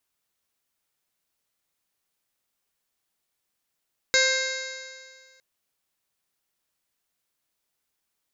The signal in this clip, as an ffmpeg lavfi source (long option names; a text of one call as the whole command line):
ffmpeg -f lavfi -i "aevalsrc='0.0631*pow(10,-3*t/1.87)*sin(2*PI*521.52*t)+0.0119*pow(10,-3*t/1.87)*sin(2*PI*1046.16*t)+0.0794*pow(10,-3*t/1.87)*sin(2*PI*1577*t)+0.0841*pow(10,-3*t/1.87)*sin(2*PI*2117.08*t)+0.0158*pow(10,-3*t/1.87)*sin(2*PI*2669.33*t)+0.00708*pow(10,-3*t/1.87)*sin(2*PI*3236.58*t)+0.0631*pow(10,-3*t/1.87)*sin(2*PI*3821.53*t)+0.0447*pow(10,-3*t/1.87)*sin(2*PI*4426.72*t)+0.0473*pow(10,-3*t/1.87)*sin(2*PI*5054.56*t)+0.0224*pow(10,-3*t/1.87)*sin(2*PI*5707.27*t)+0.0422*pow(10,-3*t/1.87)*sin(2*PI*6386.92*t)+0.0355*pow(10,-3*t/1.87)*sin(2*PI*7095.4*t)':duration=1.26:sample_rate=44100" out.wav